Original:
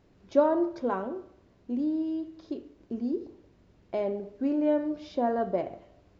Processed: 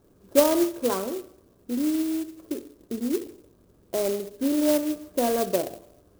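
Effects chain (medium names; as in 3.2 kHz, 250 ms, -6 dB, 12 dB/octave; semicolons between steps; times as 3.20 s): rippled Chebyshev low-pass 1.7 kHz, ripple 6 dB; sampling jitter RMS 0.087 ms; trim +6 dB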